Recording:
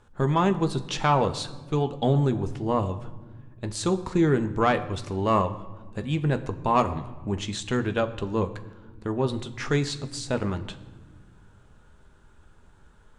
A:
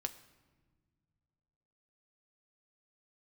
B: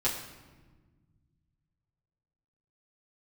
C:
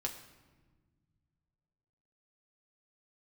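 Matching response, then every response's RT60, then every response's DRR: A; non-exponential decay, non-exponential decay, non-exponential decay; 7.5, −8.5, 1.0 decibels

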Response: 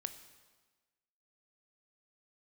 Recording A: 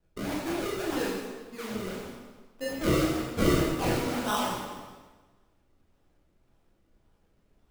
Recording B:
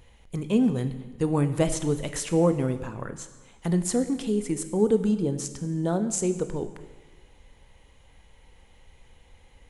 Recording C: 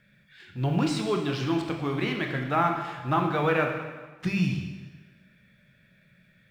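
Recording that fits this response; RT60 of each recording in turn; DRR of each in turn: B; 1.3, 1.3, 1.3 seconds; −5.5, 9.5, 3.0 decibels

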